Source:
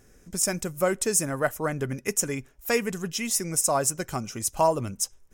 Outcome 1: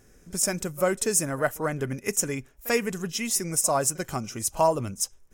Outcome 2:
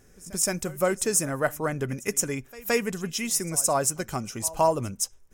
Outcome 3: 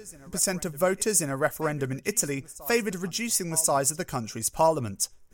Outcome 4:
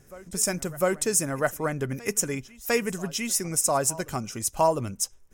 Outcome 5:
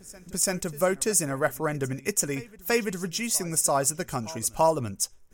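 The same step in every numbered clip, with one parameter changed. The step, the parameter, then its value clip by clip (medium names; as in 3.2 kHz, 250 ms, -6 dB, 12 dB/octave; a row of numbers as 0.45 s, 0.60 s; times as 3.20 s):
reverse echo, time: 42 ms, 170 ms, 1084 ms, 702 ms, 337 ms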